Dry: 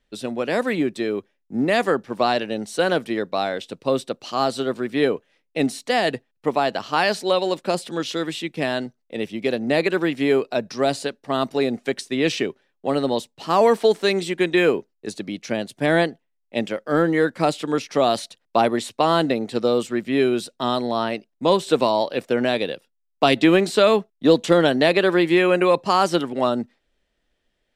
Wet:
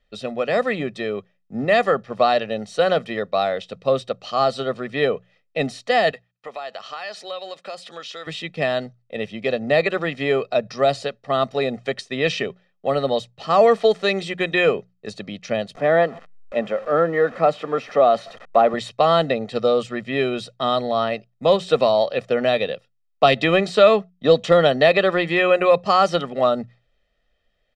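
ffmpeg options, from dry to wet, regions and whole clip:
-filter_complex "[0:a]asettb=1/sr,asplit=3[s0][s1][s2];[s0]atrim=end=6.114[s3];[s1]atrim=start=6.11:end=8.27,asetpts=PTS-STARTPTS,afade=t=in:d=0.004:c=qsin,afade=t=out:st=2.156:d=0.004:c=qsin,highpass=f=940:p=1,acompressor=threshold=0.0251:ratio=3:attack=3.2:release=140:knee=1:detection=peak[s4];[s2]atrim=start=8.266[s5];[s3][s4]acrossfade=d=0.004:c1=hsin:c2=qsin[s6];[s6][s5]acrossfade=d=0.004:c1=qsin:c2=hsin,asettb=1/sr,asplit=3[s7][s8][s9];[s7]atrim=end=15.754[s10];[s8]atrim=start=15.75:end=18.74,asetpts=PTS-STARTPTS,afade=t=in:d=0.004:c=qsin,afade=t=out:st=2.986:d=0.004:c=qsin,aeval=exprs='val(0)+0.5*0.0266*sgn(val(0))':c=same,acrossover=split=170 2100:gain=0.141 1 0.224[s11][s12][s13];[s11][s12][s13]amix=inputs=3:normalize=0,acompressor=mode=upward:threshold=0.0126:ratio=2.5:attack=3.2:release=140:knee=2.83:detection=peak[s14];[s9]atrim=start=18.736[s15];[s10][s14]acrossfade=d=0.004:c1=hsin:c2=qsin[s16];[s16][s15]acrossfade=d=0.004:c1=qsin:c2=hsin,lowpass=4900,bandreject=f=60:t=h:w=6,bandreject=f=120:t=h:w=6,bandreject=f=180:t=h:w=6,aecho=1:1:1.6:0.66"

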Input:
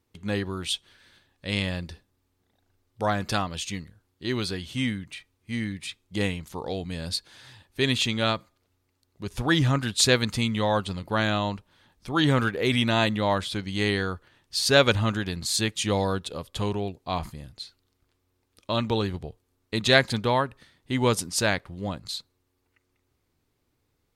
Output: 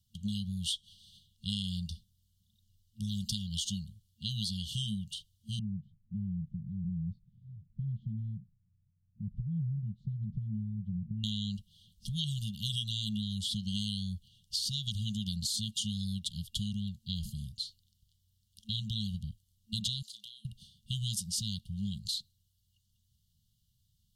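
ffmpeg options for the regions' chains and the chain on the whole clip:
-filter_complex "[0:a]asettb=1/sr,asplit=3[s0][s1][s2];[s0]atrim=end=5.594[s3];[s1]atrim=start=5.59:end=11.24,asetpts=PTS-STARTPTS,afade=t=in:d=0.004:c=qsin,afade=t=out:st=5.646:d=0.004:c=qsin,acompressor=threshold=0.0158:ratio=2:attack=3.2:release=140:knee=1:detection=peak,lowpass=f=230:t=q:w=1.8,aecho=1:1:7.2:0.49,atrim=end_sample=249165[s4];[s2]atrim=start=11.236[s5];[s3][s4]acrossfade=d=0.004:c1=hsin:c2=qsin[s6];[s6][s5]acrossfade=d=0.004:c1=qsin:c2=hsin,asettb=1/sr,asplit=3[s7][s8][s9];[s7]atrim=end=20.024[s10];[s8]atrim=start=20.02:end=20.45,asetpts=PTS-STARTPTS,afade=t=in:d=0.004:c=qsin,afade=t=out:st=0.426:d=0.004:c=qsin,highpass=1300,acompressor=threshold=0.00708:ratio=6:attack=3.2:release=140:knee=1:detection=peak,asplit=2[s11][s12];[s12]adelay=34,volume=0.266[s13];[s11][s13]amix=inputs=2:normalize=0,atrim=end_sample=18963[s14];[s9]atrim=start=20.446[s15];[s10][s14]acrossfade=d=0.004:c1=hsin:c2=qsin[s16];[s16][s15]acrossfade=d=0.004:c1=qsin:c2=hsin,acrossover=split=180|3400[s17][s18][s19];[s17]acompressor=threshold=0.0158:ratio=4[s20];[s18]acompressor=threshold=0.0501:ratio=4[s21];[s19]acompressor=threshold=0.0282:ratio=4[s22];[s20][s21][s22]amix=inputs=3:normalize=0,afftfilt=real='re*(1-between(b*sr/4096,220,2800))':imag='im*(1-between(b*sr/4096,220,2800))':win_size=4096:overlap=0.75,acompressor=threshold=0.0224:ratio=6,volume=1.26"

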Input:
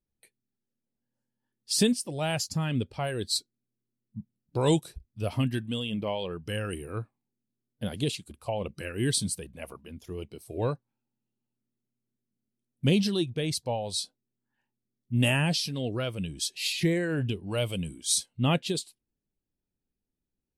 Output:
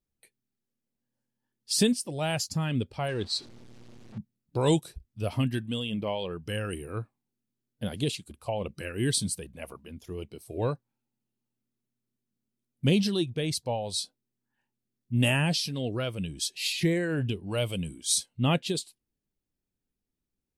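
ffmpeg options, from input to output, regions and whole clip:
-filter_complex "[0:a]asettb=1/sr,asplit=3[s0][s1][s2];[s0]atrim=end=3.084[s3];[s1]atrim=start=3.08:end=4.18,asetpts=PTS-STARTPTS,afade=t=in:d=0.004:c=qsin,afade=t=out:st=1.096:d=0.004:c=qsin,aeval=exprs='val(0)+0.5*0.00841*sgn(val(0))':c=same,lowpass=4900[s4];[s2]atrim=start=4.176[s5];[s3][s4]acrossfade=d=0.004:c1=hsin:c2=qsin[s6];[s6][s5]acrossfade=d=0.004:c1=qsin:c2=hsin"

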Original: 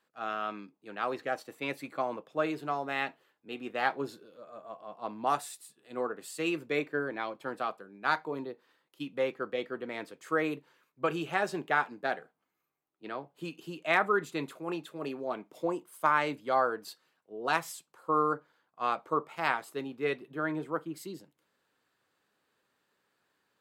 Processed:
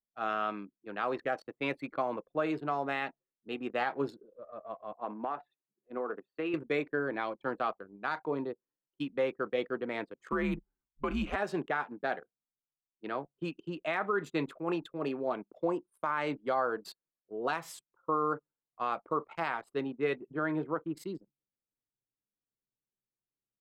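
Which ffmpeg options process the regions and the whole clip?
-filter_complex "[0:a]asettb=1/sr,asplit=3[s0][s1][s2];[s0]atrim=end=4.924[s3];[s1]atrim=start=4.92:end=6.54,asetpts=PTS-STARTPTS,afade=t=in:d=0.004:c=qsin,afade=t=out:st=1.616:d=0.004:c=qsin,highpass=200,lowpass=2400,acompressor=threshold=0.0251:ratio=12:attack=3.2:release=140:knee=1:detection=peak[s4];[s2]atrim=start=6.536[s5];[s3][s4]acrossfade=d=0.004:c1=hsin:c2=qsin[s6];[s6][s5]acrossfade=d=0.004:c1=qsin:c2=hsin,asettb=1/sr,asplit=3[s7][s8][s9];[s7]atrim=end=10.324[s10];[s8]atrim=start=10.32:end=11.36,asetpts=PTS-STARTPTS,afade=t=in:d=0.004:c=qsin,afade=t=out:st=1.036:d=0.004:c=qsin,afreqshift=-110,acompressor=threshold=0.0355:ratio=3:attack=3.2:release=140:knee=1:detection=peak[s11];[s9]atrim=start=11.356[s12];[s10][s11]acrossfade=d=0.004:c1=hsin:c2=qsin[s13];[s13][s12]acrossfade=d=0.004:c1=qsin:c2=hsin,anlmdn=0.0158,highshelf=f=4700:g=-9.5,alimiter=limit=0.0668:level=0:latency=1:release=153,volume=1.41"

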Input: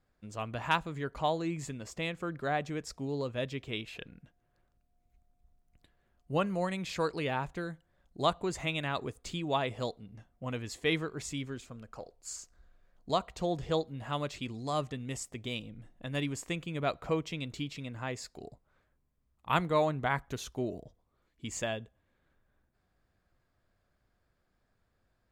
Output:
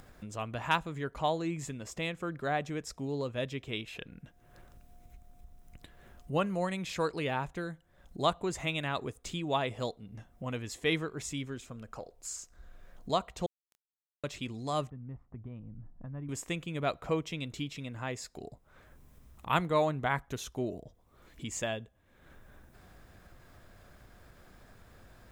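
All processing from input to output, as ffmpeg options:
-filter_complex "[0:a]asettb=1/sr,asplit=3[s0][s1][s2];[s0]atrim=end=13.464[s3];[s1]atrim=start=13.46:end=14.24,asetpts=PTS-STARTPTS,afade=t=in:d=0.004:c=qsin,afade=t=out:st=0.776:d=0.004:c=qsin,acrossover=split=210|3000[s4][s5][s6];[s5]acompressor=threshold=0.0251:ratio=2.5:attack=3.2:release=140:knee=2.83:detection=peak[s7];[s4][s7][s6]amix=inputs=3:normalize=0,acrusher=bits=2:mix=0:aa=0.5,asplit=2[s8][s9];[s9]adelay=28,volume=0.75[s10];[s8][s10]amix=inputs=2:normalize=0,atrim=end_sample=34398[s11];[s2]atrim=start=14.236[s12];[s3][s11]acrossfade=d=0.004:c1=hsin:c2=qsin[s13];[s13][s12]acrossfade=d=0.004:c1=qsin:c2=hsin,asettb=1/sr,asplit=3[s14][s15][s16];[s14]atrim=end=14.904[s17];[s15]atrim=start=14.9:end=16.29,asetpts=PTS-STARTPTS,afade=t=in:d=0.004:c=qsin,afade=t=out:st=1.386:d=0.004:c=qsin,lowpass=f=1100:w=0.5412,lowpass=f=1100:w=1.3066,equalizer=f=490:t=o:w=2.2:g=-15[s18];[s16]atrim=start=16.286[s19];[s17][s18]acrossfade=d=0.004:c1=hsin:c2=qsin[s20];[s20][s19]acrossfade=d=0.004:c1=qsin:c2=hsin,highshelf=f=9000:g=3.5,acompressor=mode=upward:threshold=0.0126:ratio=2.5,bandreject=f=4500:w=12"

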